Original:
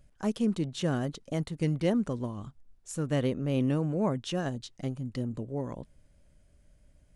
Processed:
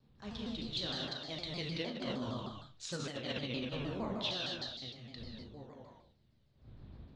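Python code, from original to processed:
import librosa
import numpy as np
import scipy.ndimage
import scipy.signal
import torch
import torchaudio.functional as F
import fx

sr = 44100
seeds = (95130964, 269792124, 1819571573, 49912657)

p1 = fx.doppler_pass(x, sr, speed_mps=9, closest_m=4.6, pass_at_s=2.64)
p2 = fx.dmg_wind(p1, sr, seeds[0], corner_hz=100.0, level_db=-49.0)
p3 = fx.rev_gated(p2, sr, seeds[1], gate_ms=300, shape='flat', drr_db=-2.5)
p4 = fx.over_compress(p3, sr, threshold_db=-30.0, ratio=-0.5)
p5 = fx.ladder_lowpass(p4, sr, hz=4300.0, resonance_pct=70)
p6 = fx.tilt_eq(p5, sr, slope=2.5)
p7 = p6 + fx.room_flutter(p6, sr, wall_m=6.4, rt60_s=0.22, dry=0)
p8 = fx.vibrato_shape(p7, sr, shape='saw_down', rate_hz=6.5, depth_cents=160.0)
y = p8 * librosa.db_to_amplitude(8.0)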